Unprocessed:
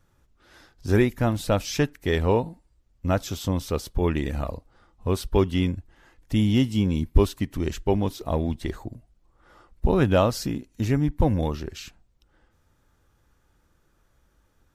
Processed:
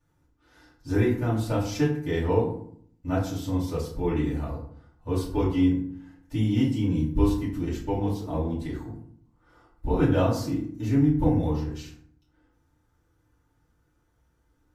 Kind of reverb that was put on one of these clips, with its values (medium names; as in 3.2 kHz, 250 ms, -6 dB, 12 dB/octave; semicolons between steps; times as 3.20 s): FDN reverb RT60 0.61 s, low-frequency decay 1.4×, high-frequency decay 0.55×, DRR -10 dB; trim -15 dB